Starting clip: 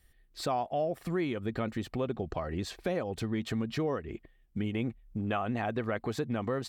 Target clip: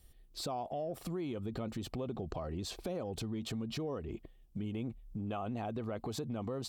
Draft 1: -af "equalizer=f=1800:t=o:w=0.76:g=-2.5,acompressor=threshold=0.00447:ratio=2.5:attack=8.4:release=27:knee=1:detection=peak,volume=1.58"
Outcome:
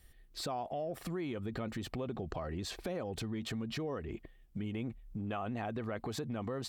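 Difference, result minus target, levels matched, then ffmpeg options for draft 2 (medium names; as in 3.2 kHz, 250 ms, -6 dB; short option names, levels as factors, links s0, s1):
2 kHz band +6.0 dB
-af "equalizer=f=1800:t=o:w=0.76:g=-12.5,acompressor=threshold=0.00447:ratio=2.5:attack=8.4:release=27:knee=1:detection=peak,volume=1.58"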